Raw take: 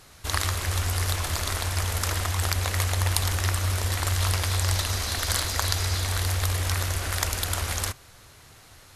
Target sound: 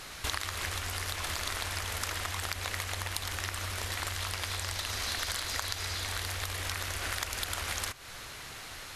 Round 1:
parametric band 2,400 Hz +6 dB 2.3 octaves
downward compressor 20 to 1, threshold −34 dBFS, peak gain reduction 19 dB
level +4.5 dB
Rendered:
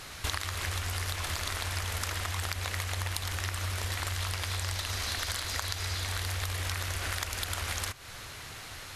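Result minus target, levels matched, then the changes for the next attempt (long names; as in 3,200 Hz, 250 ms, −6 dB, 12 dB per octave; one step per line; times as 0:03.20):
125 Hz band +5.0 dB
add after downward compressor: parametric band 94 Hz −6 dB 1.1 octaves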